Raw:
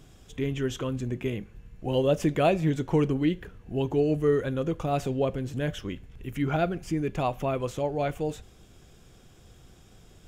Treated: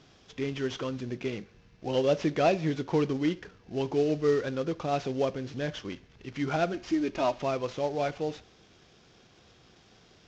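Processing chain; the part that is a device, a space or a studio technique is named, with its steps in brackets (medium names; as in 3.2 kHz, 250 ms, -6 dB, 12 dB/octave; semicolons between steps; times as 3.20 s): 6.73–7.42 s: comb 3.2 ms, depth 80%; tape echo 68 ms, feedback 39%, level -24 dB, low-pass 3.7 kHz; early wireless headset (high-pass 250 Hz 6 dB/octave; CVSD coder 32 kbps)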